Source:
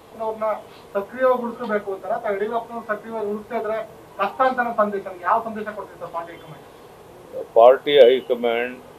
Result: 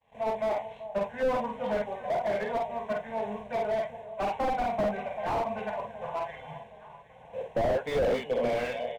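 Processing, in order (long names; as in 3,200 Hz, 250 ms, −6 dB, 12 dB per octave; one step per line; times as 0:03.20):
mu-law and A-law mismatch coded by A
high-shelf EQ 2,300 Hz +6.5 dB
phaser with its sweep stopped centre 1,300 Hz, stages 6
downward expander −46 dBFS
high-frequency loss of the air 140 metres
double-tracking delay 50 ms −4.5 dB
delay that swaps between a low-pass and a high-pass 385 ms, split 840 Hz, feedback 62%, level −14 dB
slew-rate limiting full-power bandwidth 42 Hz
level −1.5 dB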